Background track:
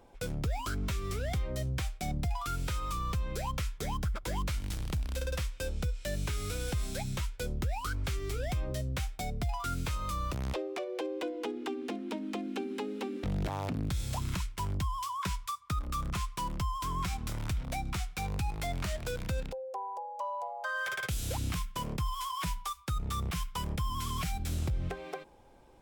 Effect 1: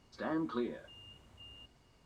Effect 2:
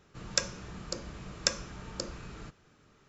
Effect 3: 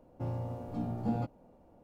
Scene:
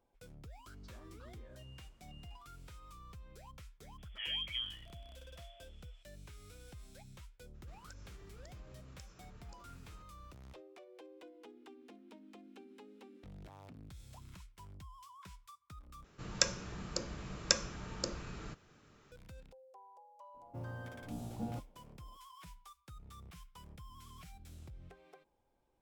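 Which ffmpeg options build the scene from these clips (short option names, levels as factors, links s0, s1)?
-filter_complex "[1:a]asplit=2[s0][s1];[2:a]asplit=2[s2][s3];[0:a]volume=0.106[s4];[s0]acompressor=threshold=0.00355:ratio=6:attack=3.2:release=140:knee=1:detection=peak[s5];[s1]lowpass=f=3000:t=q:w=0.5098,lowpass=f=3000:t=q:w=0.6013,lowpass=f=3000:t=q:w=0.9,lowpass=f=3000:t=q:w=2.563,afreqshift=-3500[s6];[s2]acompressor=threshold=0.00501:ratio=6:attack=3.2:release=140:knee=1:detection=peak[s7];[3:a]acrusher=bits=9:mode=log:mix=0:aa=0.000001[s8];[s4]asplit=2[s9][s10];[s9]atrim=end=16.044[s11];[s3]atrim=end=3.08,asetpts=PTS-STARTPTS,volume=0.891[s12];[s10]atrim=start=19.116[s13];[s5]atrim=end=2.05,asetpts=PTS-STARTPTS,volume=0.422,afade=t=in:d=0.004:c=hsin,afade=t=out:st=2.046:d=0.004:c=hsin,adelay=710[s14];[s6]atrim=end=2.05,asetpts=PTS-STARTPTS,volume=0.631,afade=t=in:d=0.004:c=hsin,afade=t=out:st=2.046:d=0.004:c=hsin,adelay=3980[s15];[s7]atrim=end=3.08,asetpts=PTS-STARTPTS,volume=0.316,afade=t=in:d=0.02,afade=t=out:st=3.06:d=0.02,adelay=7530[s16];[s8]atrim=end=1.83,asetpts=PTS-STARTPTS,volume=0.376,afade=t=in:d=0.004:c=hsin,afade=t=out:st=1.826:d=0.004:c=hsin,adelay=20340[s17];[s11][s12]acrossfade=d=0.004:c1=hsin:c2=hsin[s18];[s18][s13]acrossfade=d=0.004:c1=hsin:c2=hsin[s19];[s19][s14][s15][s16][s17]amix=inputs=5:normalize=0"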